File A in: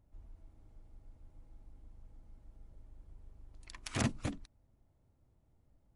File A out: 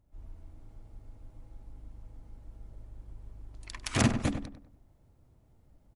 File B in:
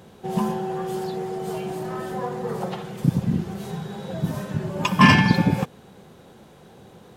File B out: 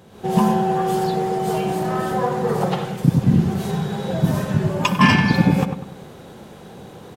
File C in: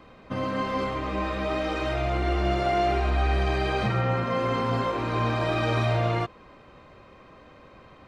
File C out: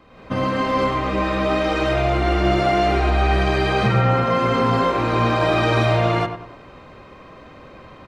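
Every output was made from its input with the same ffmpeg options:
-filter_complex "[0:a]asplit=2[a][b];[b]adelay=98,lowpass=f=2k:p=1,volume=-8dB,asplit=2[c][d];[d]adelay=98,lowpass=f=2k:p=1,volume=0.4,asplit=2[e][f];[f]adelay=98,lowpass=f=2k:p=1,volume=0.4,asplit=2[g][h];[h]adelay=98,lowpass=f=2k:p=1,volume=0.4,asplit=2[i][j];[j]adelay=98,lowpass=f=2k:p=1,volume=0.4[k];[a][c][e][g][i][k]amix=inputs=6:normalize=0,dynaudnorm=f=100:g=3:m=8.5dB,volume=-1dB"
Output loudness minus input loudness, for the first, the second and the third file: +8.0, +4.0, +7.0 LU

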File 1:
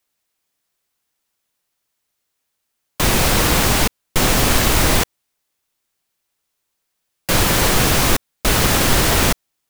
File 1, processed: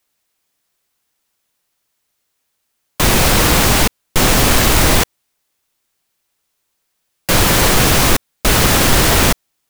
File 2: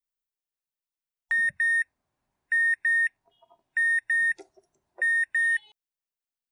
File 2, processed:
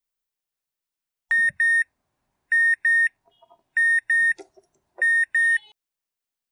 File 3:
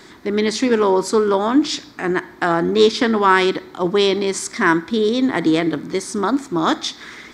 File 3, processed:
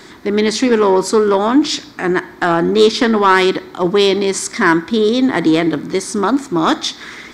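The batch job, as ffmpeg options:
-af "acontrast=39,volume=-1dB"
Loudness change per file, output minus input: +3.5, +4.5, +3.5 LU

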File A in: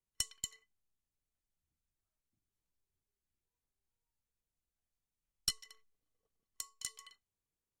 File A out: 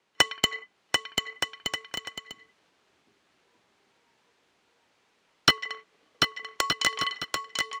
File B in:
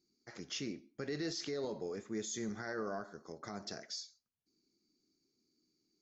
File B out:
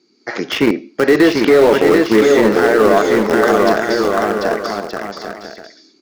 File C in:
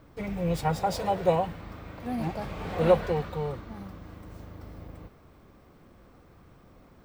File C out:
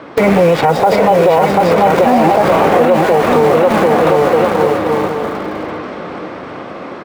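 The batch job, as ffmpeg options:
-filter_complex "[0:a]highpass=320,lowpass=3.4k,dynaudnorm=f=140:g=3:m=3.5dB,asplit=2[a][b];[b]acrusher=bits=5:mix=0:aa=0.000001,volume=-7dB[c];[a][c]amix=inputs=2:normalize=0,acrossover=split=960|2500[d][e][f];[d]acompressor=threshold=-30dB:ratio=4[g];[e]acompressor=threshold=-44dB:ratio=4[h];[f]acompressor=threshold=-57dB:ratio=4[i];[g][h][i]amix=inputs=3:normalize=0,asplit=2[j][k];[k]aecho=0:1:740|1221|1534|1737|1869:0.631|0.398|0.251|0.158|0.1[l];[j][l]amix=inputs=2:normalize=0,alimiter=level_in=27.5dB:limit=-1dB:release=50:level=0:latency=1,volume=-1dB"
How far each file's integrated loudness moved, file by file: +13.5, +28.5, +17.5 LU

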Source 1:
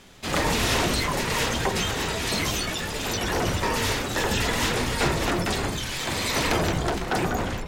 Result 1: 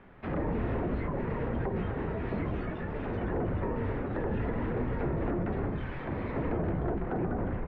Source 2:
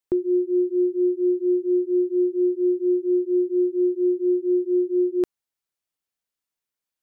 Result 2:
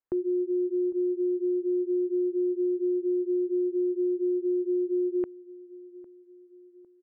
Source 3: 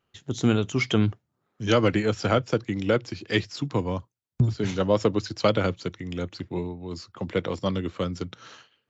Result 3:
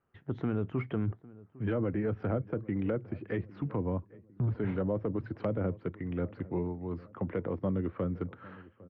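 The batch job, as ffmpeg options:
-filter_complex "[0:a]lowpass=f=1.9k:w=0.5412,lowpass=f=1.9k:w=1.3066,acrossover=split=580[a][b];[a]alimiter=limit=-22dB:level=0:latency=1:release=27[c];[b]acompressor=threshold=-40dB:ratio=12[d];[c][d]amix=inputs=2:normalize=0,asplit=2[e][f];[f]adelay=804,lowpass=f=1.1k:p=1,volume=-20dB,asplit=2[g][h];[h]adelay=804,lowpass=f=1.1k:p=1,volume=0.49,asplit=2[i][j];[j]adelay=804,lowpass=f=1.1k:p=1,volume=0.49,asplit=2[k][l];[l]adelay=804,lowpass=f=1.1k:p=1,volume=0.49[m];[e][g][i][k][m]amix=inputs=5:normalize=0,volume=-2dB"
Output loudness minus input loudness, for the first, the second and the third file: -8.5, -5.5, -8.0 LU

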